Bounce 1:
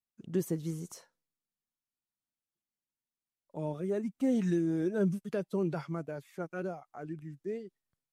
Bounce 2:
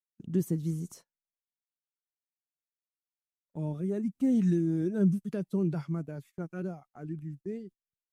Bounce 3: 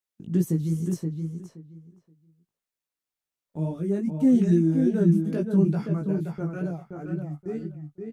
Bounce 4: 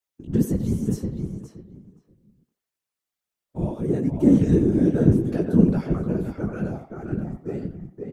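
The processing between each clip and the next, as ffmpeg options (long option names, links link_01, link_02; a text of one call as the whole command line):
ffmpeg -i in.wav -af "agate=range=-22dB:threshold=-51dB:ratio=16:detection=peak,firequalizer=gain_entry='entry(190,0);entry(510,-11);entry(9400,-6)':delay=0.05:min_phase=1,volume=5.5dB" out.wav
ffmpeg -i in.wav -filter_complex "[0:a]flanger=delay=17:depth=3.5:speed=2.4,asplit=2[link_01][link_02];[link_02]adelay=524,lowpass=frequency=2600:poles=1,volume=-5dB,asplit=2[link_03][link_04];[link_04]adelay=524,lowpass=frequency=2600:poles=1,volume=0.18,asplit=2[link_05][link_06];[link_06]adelay=524,lowpass=frequency=2600:poles=1,volume=0.18[link_07];[link_03][link_05][link_07]amix=inputs=3:normalize=0[link_08];[link_01][link_08]amix=inputs=2:normalize=0,volume=8dB" out.wav
ffmpeg -i in.wav -filter_complex "[0:a]afftfilt=real='hypot(re,im)*cos(2*PI*random(0))':imag='hypot(re,im)*sin(2*PI*random(1))':win_size=512:overlap=0.75,asplit=2[link_01][link_02];[link_02]adelay=90,highpass=300,lowpass=3400,asoftclip=type=hard:threshold=-20dB,volume=-9dB[link_03];[link_01][link_03]amix=inputs=2:normalize=0,volume=8dB" out.wav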